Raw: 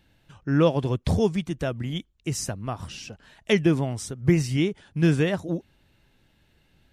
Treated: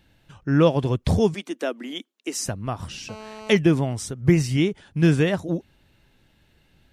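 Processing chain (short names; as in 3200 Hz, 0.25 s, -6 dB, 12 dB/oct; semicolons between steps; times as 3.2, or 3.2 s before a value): 1.34–2.46 steep high-pass 240 Hz 48 dB/oct; 3.09–3.57 GSM buzz -42 dBFS; gain +2.5 dB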